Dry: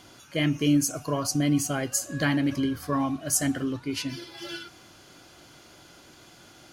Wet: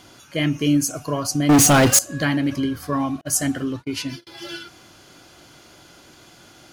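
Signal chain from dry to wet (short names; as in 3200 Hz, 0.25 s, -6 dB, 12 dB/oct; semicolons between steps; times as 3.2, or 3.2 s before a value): 1.49–1.99 sample leveller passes 5; 3.21–4.27 gate -35 dBFS, range -38 dB; gain +3.5 dB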